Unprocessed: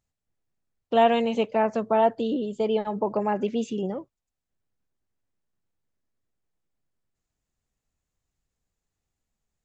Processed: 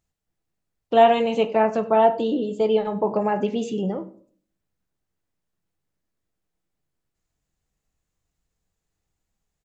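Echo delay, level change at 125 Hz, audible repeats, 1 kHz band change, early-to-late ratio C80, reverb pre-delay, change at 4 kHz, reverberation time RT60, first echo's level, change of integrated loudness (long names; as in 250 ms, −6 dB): 97 ms, +4.0 dB, 1, +4.0 dB, 18.0 dB, 6 ms, +2.5 dB, 0.50 s, −21.5 dB, +4.0 dB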